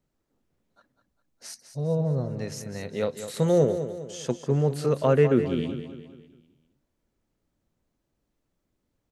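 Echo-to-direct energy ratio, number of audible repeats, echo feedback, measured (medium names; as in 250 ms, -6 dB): -9.5 dB, 4, 44%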